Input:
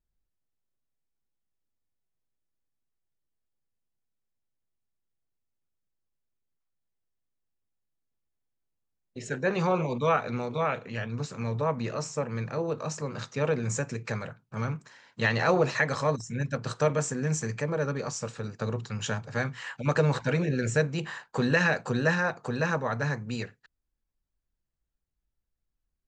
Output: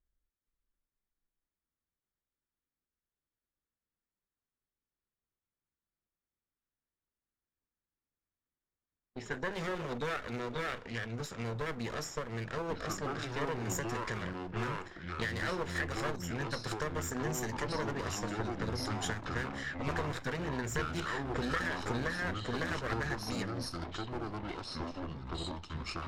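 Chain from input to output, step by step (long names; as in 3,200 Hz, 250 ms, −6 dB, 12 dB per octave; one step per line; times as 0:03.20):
lower of the sound and its delayed copy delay 0.56 ms
low-pass that shuts in the quiet parts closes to 2,100 Hz, open at −28 dBFS
parametric band 140 Hz −8 dB 1.2 octaves
downward compressor 6 to 1, threshold −33 dBFS, peak gain reduction 12 dB
delay with pitch and tempo change per echo 471 ms, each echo −5 semitones, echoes 2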